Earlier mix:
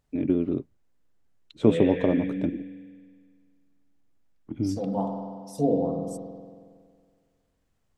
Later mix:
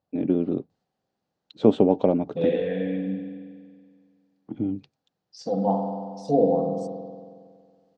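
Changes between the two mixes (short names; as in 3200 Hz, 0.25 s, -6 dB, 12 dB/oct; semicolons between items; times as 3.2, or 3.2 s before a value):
second voice: entry +0.70 s; master: add speaker cabinet 130–6200 Hz, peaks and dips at 190 Hz +5 dB, 500 Hz +6 dB, 770 Hz +9 dB, 2200 Hz -5 dB, 4400 Hz +6 dB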